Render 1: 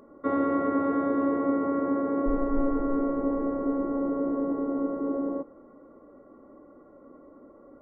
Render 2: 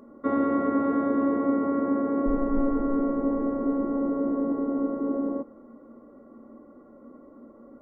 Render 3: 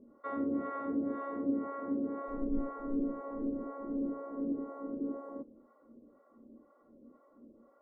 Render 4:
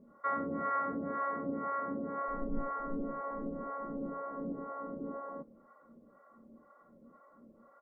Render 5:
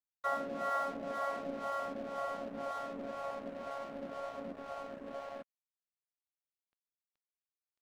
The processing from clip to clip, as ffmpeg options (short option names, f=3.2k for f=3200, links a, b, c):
-af "equalizer=f=230:w=7.5:g=13.5"
-filter_complex "[0:a]acrossover=split=540[a][b];[a]aeval=exprs='val(0)*(1-1/2+1/2*cos(2*PI*2*n/s))':c=same[c];[b]aeval=exprs='val(0)*(1-1/2-1/2*cos(2*PI*2*n/s))':c=same[d];[c][d]amix=inputs=2:normalize=0,volume=-6dB"
-af "firequalizer=gain_entry='entry(100,0);entry(170,9);entry(270,-7);entry(590,2);entry(1400,10);entry(1900,9);entry(2800,-1)':delay=0.05:min_phase=1"
-af "highpass=300,equalizer=f=310:t=q:w=4:g=-9,equalizer=f=460:t=q:w=4:g=-8,equalizer=f=680:t=q:w=4:g=9,equalizer=f=1.1k:t=q:w=4:g=-7,equalizer=f=1.6k:t=q:w=4:g=-4,lowpass=f=2k:w=0.5412,lowpass=f=2k:w=1.3066,aeval=exprs='sgn(val(0))*max(abs(val(0))-0.00224,0)':c=same,volume=4dB"